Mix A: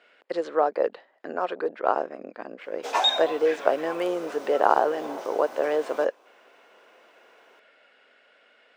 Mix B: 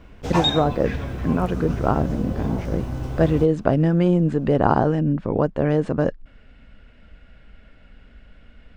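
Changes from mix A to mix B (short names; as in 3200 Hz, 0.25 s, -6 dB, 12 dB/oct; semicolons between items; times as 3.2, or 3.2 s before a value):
background: entry -2.60 s; master: remove HPF 440 Hz 24 dB/oct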